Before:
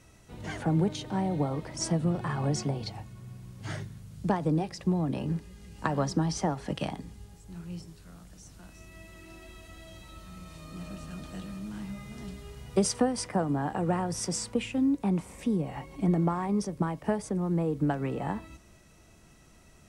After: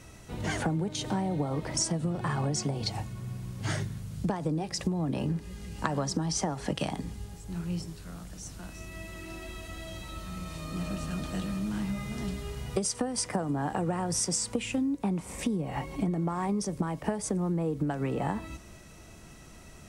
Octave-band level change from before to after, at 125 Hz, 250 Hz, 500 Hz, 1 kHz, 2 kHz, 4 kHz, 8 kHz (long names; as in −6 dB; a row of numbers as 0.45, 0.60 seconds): −0.5, −1.5, −2.0, −1.0, +2.0, +3.5, +4.5 decibels